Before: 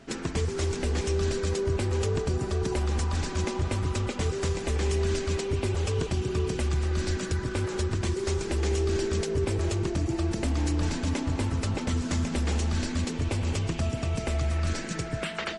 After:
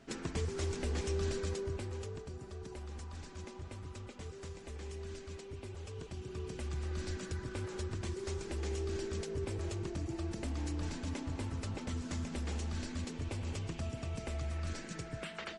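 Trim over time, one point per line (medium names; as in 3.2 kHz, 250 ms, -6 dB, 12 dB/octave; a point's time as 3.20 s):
1.39 s -8 dB
2.26 s -18 dB
5.89 s -18 dB
6.87 s -11 dB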